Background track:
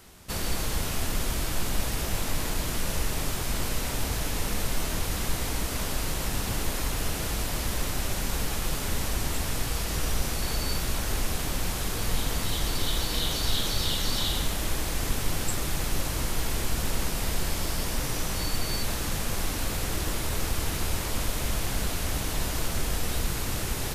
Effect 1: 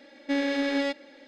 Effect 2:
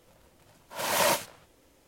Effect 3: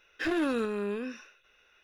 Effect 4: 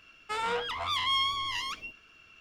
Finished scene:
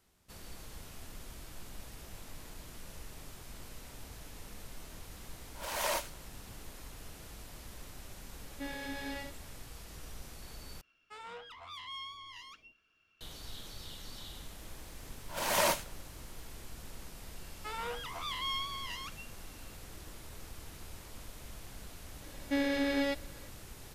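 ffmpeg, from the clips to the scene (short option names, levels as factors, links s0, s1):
-filter_complex "[2:a]asplit=2[s0][s1];[1:a]asplit=2[s2][s3];[4:a]asplit=2[s4][s5];[0:a]volume=0.106[s6];[s0]highpass=370[s7];[s2]aecho=1:1:19|70:0.596|0.562[s8];[s6]asplit=2[s9][s10];[s9]atrim=end=10.814[s11];[s4]atrim=end=2.4,asetpts=PTS-STARTPTS,volume=0.158[s12];[s10]atrim=start=13.206[s13];[s7]atrim=end=1.87,asetpts=PTS-STARTPTS,volume=0.376,afade=t=in:d=0.004:c=hsin,afade=t=out:st=1.866:d=0.004:c=hsin,adelay=4840[s14];[s8]atrim=end=1.27,asetpts=PTS-STARTPTS,volume=0.2,afade=t=in:d=0.004:c=hsin,afade=t=out:st=1.266:d=0.004:c=hsin,adelay=8310[s15];[s1]atrim=end=1.87,asetpts=PTS-STARTPTS,volume=0.631,afade=t=in:d=0.004:c=hsin,afade=t=out:st=1.866:d=0.004:c=hsin,adelay=14580[s16];[s5]atrim=end=2.4,asetpts=PTS-STARTPTS,volume=0.376,afade=t=in:d=0.004:c=hsin,afade=t=out:st=2.396:d=0.004:c=hsin,adelay=17350[s17];[s3]atrim=end=1.27,asetpts=PTS-STARTPTS,volume=0.596,afade=t=in:d=0.004:c=hsin,afade=t=out:st=1.266:d=0.004:c=hsin,adelay=22220[s18];[s11][s12]acrossfade=d=0.004:c1=hsin:c2=hsin[s19];[s19][s13]acrossfade=d=0.004:c1=hsin:c2=hsin[s20];[s20][s14][s15][s16][s17][s18]amix=inputs=6:normalize=0"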